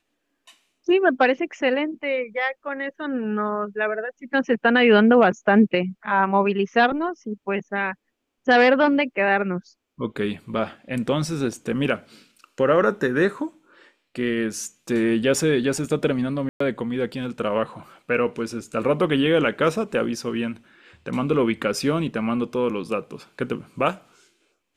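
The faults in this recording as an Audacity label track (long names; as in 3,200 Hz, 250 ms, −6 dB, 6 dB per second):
16.490000	16.600000	drop-out 114 ms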